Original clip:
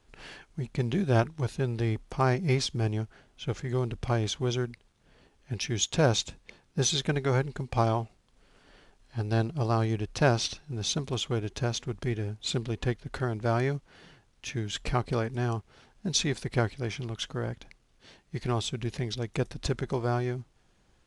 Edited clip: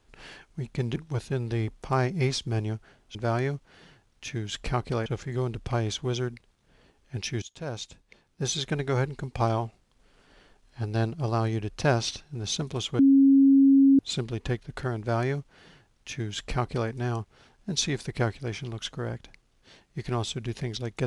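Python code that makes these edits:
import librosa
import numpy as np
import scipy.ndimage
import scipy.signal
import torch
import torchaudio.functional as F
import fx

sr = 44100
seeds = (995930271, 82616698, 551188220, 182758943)

y = fx.edit(x, sr, fx.cut(start_s=0.96, length_s=0.28),
    fx.fade_in_from(start_s=5.79, length_s=1.5, floor_db=-19.0),
    fx.bleep(start_s=11.36, length_s=1.0, hz=273.0, db=-14.0),
    fx.duplicate(start_s=13.36, length_s=1.91, to_s=3.43), tone=tone)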